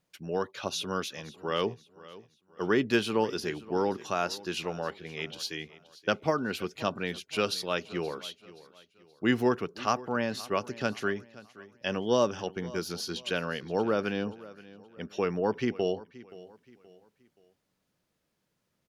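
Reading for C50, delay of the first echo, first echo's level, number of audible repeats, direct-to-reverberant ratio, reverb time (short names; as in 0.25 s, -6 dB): none, 0.525 s, -19.0 dB, 2, none, none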